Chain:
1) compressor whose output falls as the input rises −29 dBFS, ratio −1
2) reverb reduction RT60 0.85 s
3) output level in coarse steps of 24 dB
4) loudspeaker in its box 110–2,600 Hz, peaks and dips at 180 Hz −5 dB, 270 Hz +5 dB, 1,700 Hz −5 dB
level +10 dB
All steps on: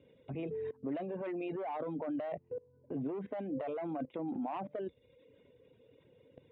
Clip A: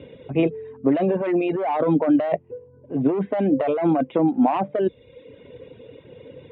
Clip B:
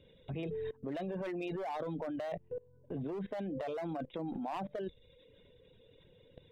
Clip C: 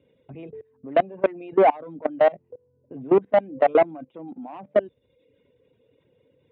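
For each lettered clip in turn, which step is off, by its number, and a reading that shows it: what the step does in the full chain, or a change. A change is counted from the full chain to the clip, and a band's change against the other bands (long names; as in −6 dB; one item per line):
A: 3, change in crest factor +3.0 dB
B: 4, 125 Hz band +3.5 dB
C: 1, change in crest factor +3.5 dB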